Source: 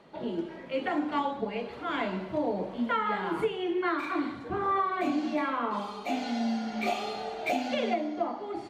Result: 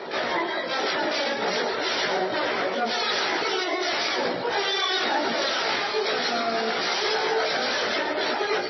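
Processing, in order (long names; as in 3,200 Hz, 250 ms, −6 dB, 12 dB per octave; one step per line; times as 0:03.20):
reverb reduction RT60 1.2 s
in parallel at +1 dB: compressor whose output falls as the input rises −36 dBFS, ratio −0.5
on the sum: sine wavefolder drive 15 dB, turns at −16.5 dBFS
pitch-shifted copies added +12 semitones −4 dB
multi-voice chorus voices 6, 0.43 Hz, delay 17 ms, depth 1.2 ms
loudspeaker in its box 370–6,400 Hz, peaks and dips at 390 Hz +6 dB, 1,100 Hz −6 dB, 2,700 Hz −7 dB
on a send at −7 dB: convolution reverb RT60 0.55 s, pre-delay 75 ms
on the sum: level −2.5 dB
MP3 24 kbit/s 22,050 Hz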